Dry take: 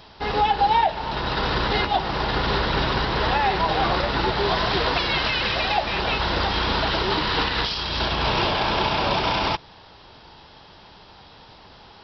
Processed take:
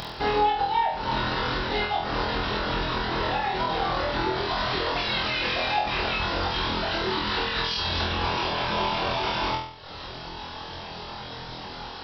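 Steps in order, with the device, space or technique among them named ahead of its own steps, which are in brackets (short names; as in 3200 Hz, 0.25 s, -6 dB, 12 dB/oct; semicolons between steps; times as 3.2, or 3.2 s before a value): upward and downward compression (upward compressor, threshold -32 dBFS; compressor 6:1, threshold -27 dBFS, peak gain reduction 11.5 dB); reverb removal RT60 0.93 s; flutter echo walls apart 4.1 m, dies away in 0.6 s; gain +2 dB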